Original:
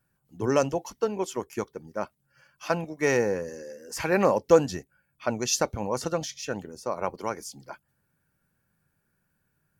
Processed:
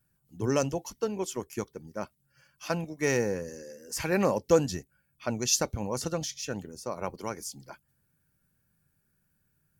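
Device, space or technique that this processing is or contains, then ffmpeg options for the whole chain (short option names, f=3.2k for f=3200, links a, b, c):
smiley-face EQ: -af "lowshelf=f=180:g=3.5,equalizer=f=890:t=o:w=2.7:g=-5,highshelf=f=5.4k:g=4.5,volume=-1dB"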